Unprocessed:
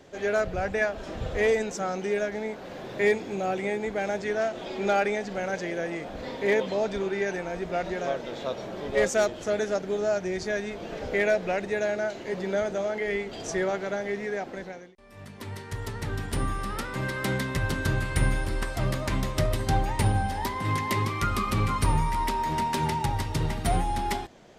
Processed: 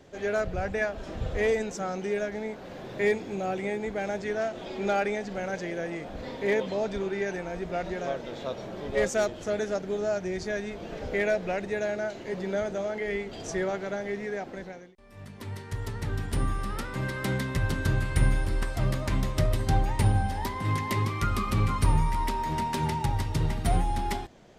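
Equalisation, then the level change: low shelf 190 Hz +5.5 dB; -3.0 dB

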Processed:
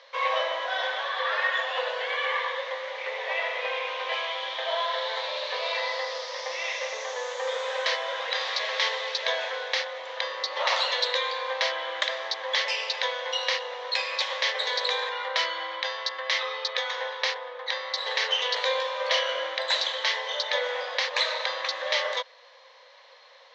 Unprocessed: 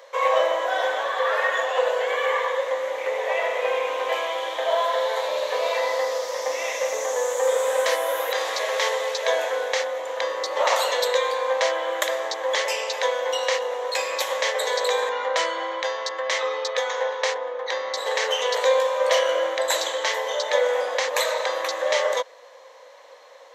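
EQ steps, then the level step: HPF 1300 Hz 6 dB/oct; steep low-pass 4900 Hz 36 dB/oct; high shelf 3500 Hz +8.5 dB; -1.5 dB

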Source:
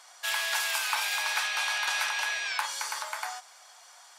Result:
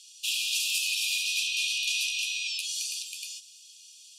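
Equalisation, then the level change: brick-wall FIR high-pass 2400 Hz; LPF 12000 Hz 12 dB/oct; +4.0 dB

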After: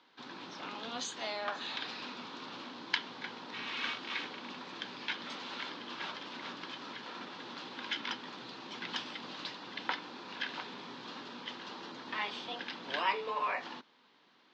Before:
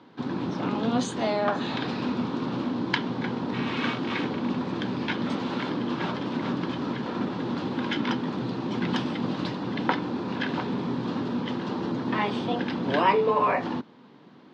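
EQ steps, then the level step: band-pass 5700 Hz, Q 0.62; Chebyshev low-pass 7500 Hz, order 3; air absorption 58 m; +1.5 dB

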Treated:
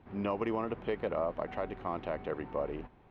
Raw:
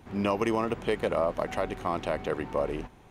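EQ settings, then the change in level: air absorption 380 m; tone controls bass -2 dB, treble +3 dB; -4.5 dB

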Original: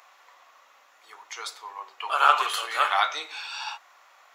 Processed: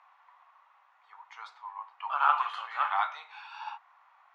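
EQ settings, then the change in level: ladder high-pass 780 Hz, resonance 55%; LPF 2600 Hz 12 dB/oct; 0.0 dB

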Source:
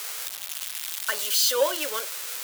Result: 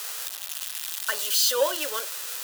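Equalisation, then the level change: HPF 220 Hz 6 dB/oct; notch 2200 Hz, Q 9.8; 0.0 dB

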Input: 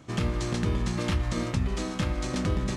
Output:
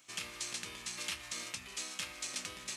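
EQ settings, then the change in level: differentiator; low shelf 120 Hz +3.5 dB; bell 2500 Hz +5.5 dB 0.53 oct; +2.5 dB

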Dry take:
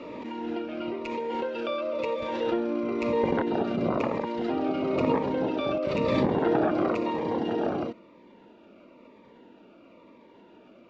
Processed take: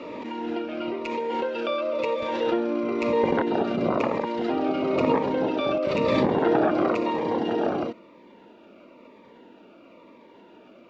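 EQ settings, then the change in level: low shelf 180 Hz -6.5 dB; +4.0 dB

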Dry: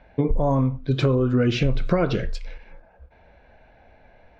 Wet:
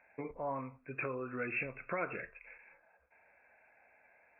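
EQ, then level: brick-wall FIR low-pass 2700 Hz; differentiator; +6.5 dB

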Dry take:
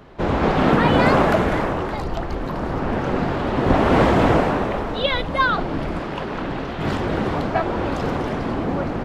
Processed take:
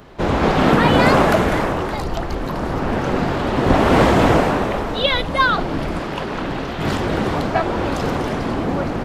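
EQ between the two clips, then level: high shelf 5000 Hz +9.5 dB; +2.0 dB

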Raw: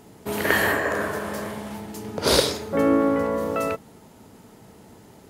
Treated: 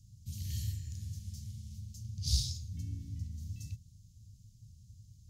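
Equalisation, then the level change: elliptic band-stop 110–6500 Hz, stop band 70 dB; air absorption 250 m; passive tone stack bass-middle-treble 5-5-5; +17.5 dB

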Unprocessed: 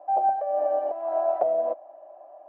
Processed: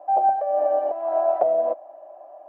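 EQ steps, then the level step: none; +3.5 dB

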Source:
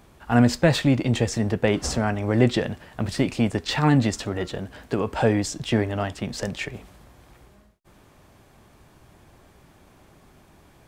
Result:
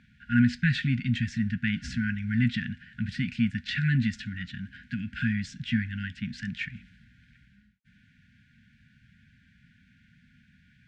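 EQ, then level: HPF 160 Hz 6 dB/oct; brick-wall FIR band-stop 260–1400 Hz; LPF 2600 Hz 12 dB/oct; 0.0 dB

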